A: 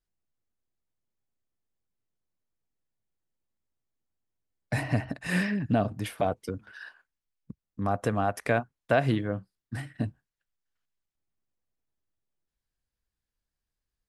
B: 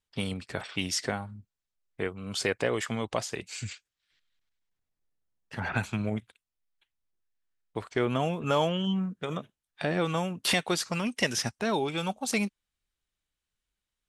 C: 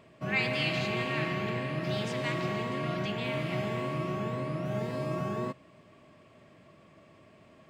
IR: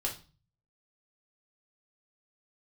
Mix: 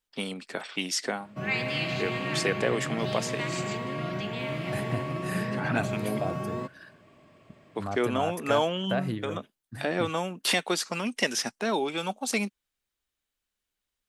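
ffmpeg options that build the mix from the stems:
-filter_complex "[0:a]bandreject=f=5400:w=6.1,aexciter=amount=2:drive=5:freq=4700,volume=0.473[s0];[1:a]highpass=f=200:w=0.5412,highpass=f=200:w=1.3066,volume=1.12[s1];[2:a]adelay=1150,volume=1[s2];[s0][s1][s2]amix=inputs=3:normalize=0"

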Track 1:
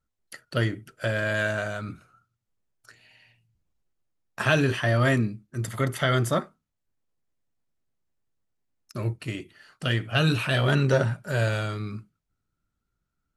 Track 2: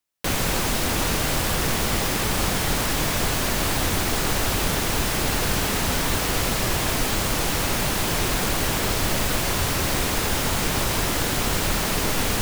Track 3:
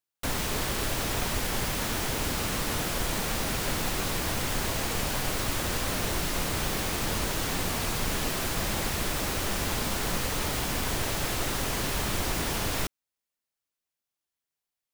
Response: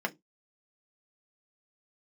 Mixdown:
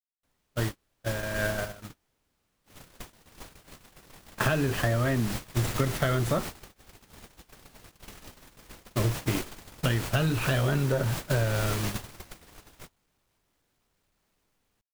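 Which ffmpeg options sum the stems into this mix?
-filter_complex "[0:a]highshelf=f=2000:g=-9,dynaudnorm=f=370:g=11:m=5.96,volume=0.75[s0];[1:a]alimiter=limit=0.178:level=0:latency=1:release=412,asoftclip=type=hard:threshold=0.0562,adelay=2400,volume=0.668[s1];[2:a]volume=0.668[s2];[s0][s1][s2]amix=inputs=3:normalize=0,agate=range=0.00708:threshold=0.0562:ratio=16:detection=peak,acompressor=threshold=0.0794:ratio=12"

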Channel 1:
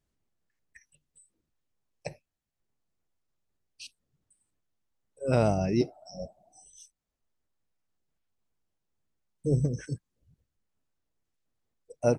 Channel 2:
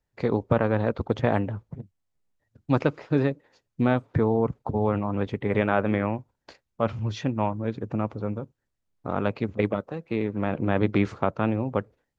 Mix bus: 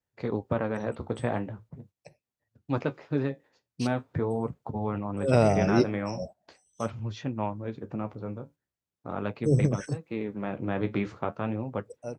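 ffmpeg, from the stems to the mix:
-filter_complex "[0:a]volume=1.41[s0];[1:a]flanger=delay=8.3:depth=7.9:regen=-52:speed=0.42:shape=sinusoidal,volume=0.794,asplit=2[s1][s2];[s2]apad=whole_len=537488[s3];[s0][s3]sidechaingate=range=0.158:threshold=0.00251:ratio=16:detection=peak[s4];[s4][s1]amix=inputs=2:normalize=0,highpass=69"

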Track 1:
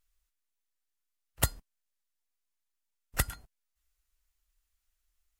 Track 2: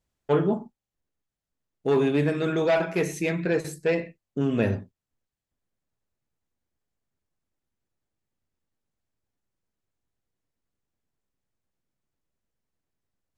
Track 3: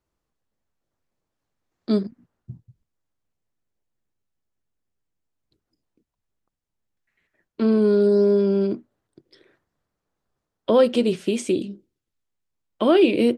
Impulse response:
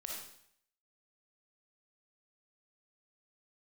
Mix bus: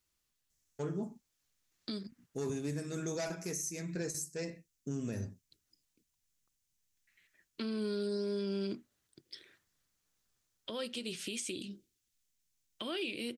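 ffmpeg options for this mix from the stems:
-filter_complex "[1:a]highshelf=f=4400:t=q:w=3:g=11.5,adelay=500,volume=0.422[s0];[2:a]tiltshelf=f=1100:g=-7.5,volume=1.12,acompressor=threshold=0.0355:ratio=2.5,volume=1[s1];[s0][s1]amix=inputs=2:normalize=0,equalizer=f=770:t=o:w=2.4:g=-9,alimiter=level_in=1.58:limit=0.0631:level=0:latency=1:release=284,volume=0.631"

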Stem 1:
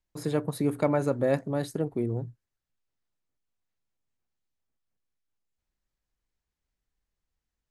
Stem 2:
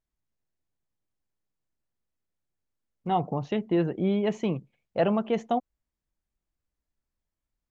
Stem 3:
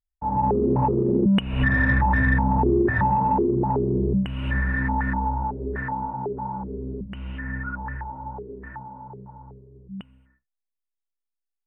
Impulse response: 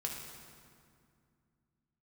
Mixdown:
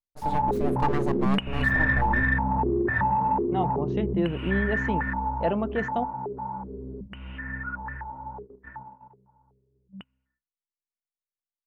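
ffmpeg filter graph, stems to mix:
-filter_complex "[0:a]aeval=exprs='abs(val(0))':c=same,volume=0.891[s0];[1:a]adelay=450,volume=0.794[s1];[2:a]tiltshelf=f=880:g=-4.5,volume=0.794[s2];[s0][s1][s2]amix=inputs=3:normalize=0,agate=range=0.178:threshold=0.00891:ratio=16:detection=peak,highshelf=f=4200:g=-7.5"

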